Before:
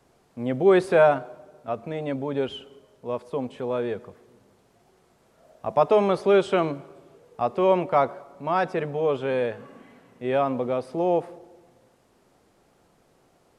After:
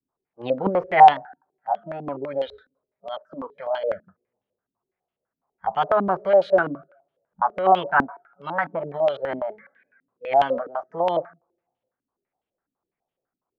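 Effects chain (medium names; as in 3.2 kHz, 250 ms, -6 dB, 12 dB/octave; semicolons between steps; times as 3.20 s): formant shift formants +4 st; spectral noise reduction 25 dB; step-sequenced low-pass 12 Hz 270–3100 Hz; trim -3.5 dB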